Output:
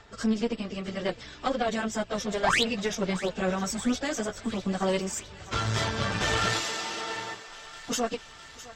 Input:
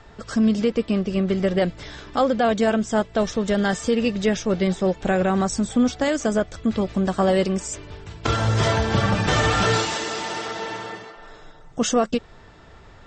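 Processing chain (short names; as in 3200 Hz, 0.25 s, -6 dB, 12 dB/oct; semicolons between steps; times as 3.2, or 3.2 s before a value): tilt shelf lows -3.5 dB, about 1200 Hz; in parallel at -2.5 dB: level quantiser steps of 18 dB; on the sum: painted sound rise, 3.63–3.93, 550–4300 Hz -16 dBFS; plain phase-vocoder stretch 0.67×; tube stage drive 13 dB, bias 0.75; on a send: thinning echo 0.658 s, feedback 70%, high-pass 680 Hz, level -15 dB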